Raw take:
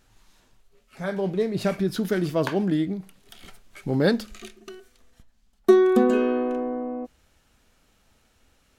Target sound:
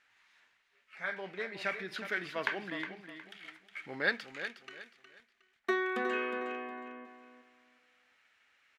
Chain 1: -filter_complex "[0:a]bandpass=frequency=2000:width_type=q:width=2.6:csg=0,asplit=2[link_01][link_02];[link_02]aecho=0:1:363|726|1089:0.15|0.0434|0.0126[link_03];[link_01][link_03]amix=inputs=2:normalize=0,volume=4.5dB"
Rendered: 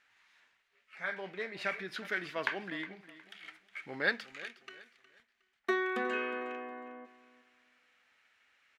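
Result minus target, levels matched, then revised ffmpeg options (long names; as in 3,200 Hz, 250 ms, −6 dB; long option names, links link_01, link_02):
echo-to-direct −6.5 dB
-filter_complex "[0:a]bandpass=frequency=2000:width_type=q:width=2.6:csg=0,asplit=2[link_01][link_02];[link_02]aecho=0:1:363|726|1089:0.316|0.0917|0.0266[link_03];[link_01][link_03]amix=inputs=2:normalize=0,volume=4.5dB"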